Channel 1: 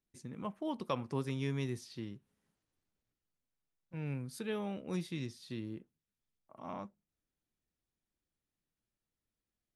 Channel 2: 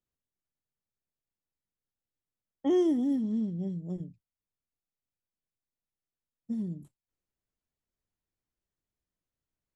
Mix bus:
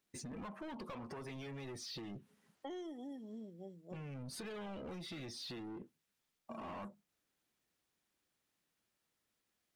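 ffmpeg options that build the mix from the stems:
ffmpeg -i stem1.wav -i stem2.wav -filter_complex "[0:a]acompressor=threshold=-44dB:ratio=6,lowshelf=frequency=220:gain=5.5,asplit=2[link_01][link_02];[link_02]highpass=frequency=720:poles=1,volume=33dB,asoftclip=type=tanh:threshold=-32dB[link_03];[link_01][link_03]amix=inputs=2:normalize=0,lowpass=frequency=4500:poles=1,volume=-6dB,volume=-3.5dB[link_04];[1:a]highpass=660,asoftclip=type=tanh:threshold=-30.5dB,volume=1.5dB[link_05];[link_04][link_05]amix=inputs=2:normalize=0,afftdn=noise_reduction=13:noise_floor=-52,highshelf=frequency=8400:gain=6,acompressor=threshold=-44dB:ratio=6" out.wav

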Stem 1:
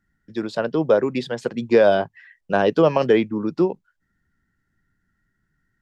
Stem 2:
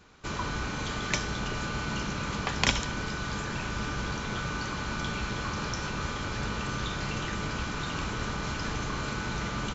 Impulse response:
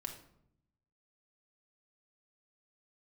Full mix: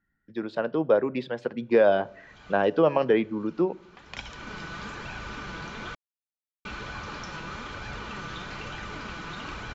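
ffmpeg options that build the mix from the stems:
-filter_complex "[0:a]volume=-5dB,asplit=3[link_01][link_02][link_03];[link_02]volume=-12dB[link_04];[1:a]aemphasis=mode=production:type=50fm,flanger=delay=1.2:depth=5:regen=48:speed=1.1:shape=sinusoidal,adelay=1500,volume=1.5dB,asplit=3[link_05][link_06][link_07];[link_05]atrim=end=5.95,asetpts=PTS-STARTPTS,afade=type=out:start_time=5.946:duration=0.004:curve=hsin[link_08];[link_06]atrim=start=5.95:end=6.65,asetpts=PTS-STARTPTS,volume=0[link_09];[link_07]atrim=start=6.65,asetpts=PTS-STARTPTS,afade=type=in:duration=0.004:curve=hsin[link_10];[link_08][link_09][link_10]concat=n=3:v=0:a=1[link_11];[link_03]apad=whole_len=495731[link_12];[link_11][link_12]sidechaincompress=threshold=-44dB:ratio=16:attack=16:release=539[link_13];[2:a]atrim=start_sample=2205[link_14];[link_04][link_14]afir=irnorm=-1:irlink=0[link_15];[link_01][link_13][link_15]amix=inputs=3:normalize=0,lowpass=3000,lowshelf=frequency=240:gain=-5"

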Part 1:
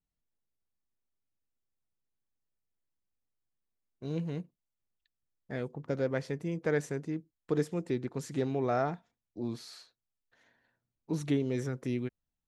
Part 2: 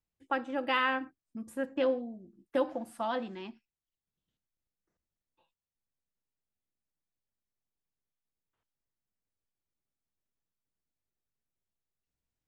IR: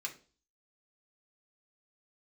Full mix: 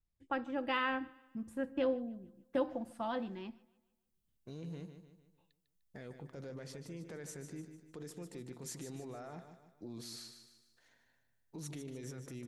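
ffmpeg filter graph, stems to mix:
-filter_complex "[0:a]acompressor=threshold=-31dB:ratio=6,alimiter=level_in=9.5dB:limit=-24dB:level=0:latency=1:release=27,volume=-9.5dB,adelay=450,volume=-5dB,asplit=2[link_01][link_02];[link_02]volume=-9dB[link_03];[1:a]aemphasis=mode=reproduction:type=bsi,volume=-6dB,asplit=2[link_04][link_05];[link_05]volume=-23.5dB[link_06];[link_03][link_06]amix=inputs=2:normalize=0,aecho=0:1:150|300|450|600|750|900:1|0.43|0.185|0.0795|0.0342|0.0147[link_07];[link_01][link_04][link_07]amix=inputs=3:normalize=0,highshelf=frequency=5000:gain=11.5"

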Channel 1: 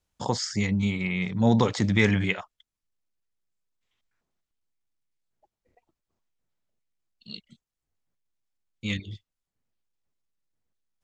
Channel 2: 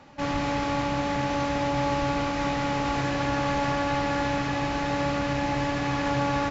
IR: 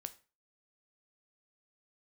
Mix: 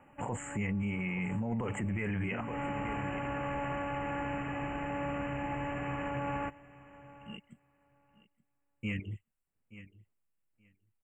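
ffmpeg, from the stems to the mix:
-filter_complex "[0:a]volume=-1dB,asplit=3[link_01][link_02][link_03];[link_02]volume=-19.5dB[link_04];[1:a]volume=-9dB,asplit=2[link_05][link_06];[link_06]volume=-19dB[link_07];[link_03]apad=whole_len=286816[link_08];[link_05][link_08]sidechaincompress=threshold=-39dB:ratio=6:attack=10:release=218[link_09];[link_04][link_07]amix=inputs=2:normalize=0,aecho=0:1:875|1750|2625:1|0.15|0.0225[link_10];[link_01][link_09][link_10]amix=inputs=3:normalize=0,asuperstop=centerf=4700:order=20:qfactor=1.1,alimiter=level_in=3dB:limit=-24dB:level=0:latency=1:release=12,volume=-3dB"

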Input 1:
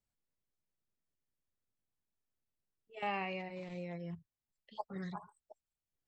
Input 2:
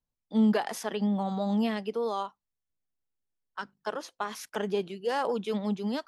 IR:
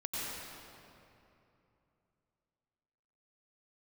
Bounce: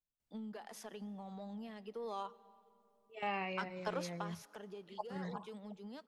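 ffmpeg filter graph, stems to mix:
-filter_complex "[0:a]adelay=200,volume=-1dB[link_01];[1:a]acompressor=threshold=-31dB:ratio=6,asoftclip=type=tanh:threshold=-23dB,volume=-2dB,afade=type=in:start_time=1.88:duration=0.52:silence=0.298538,afade=type=out:start_time=4.05:duration=0.33:silence=0.237137,asplit=2[link_02][link_03];[link_03]volume=-23.5dB[link_04];[2:a]atrim=start_sample=2205[link_05];[link_04][link_05]afir=irnorm=-1:irlink=0[link_06];[link_01][link_02][link_06]amix=inputs=3:normalize=0"

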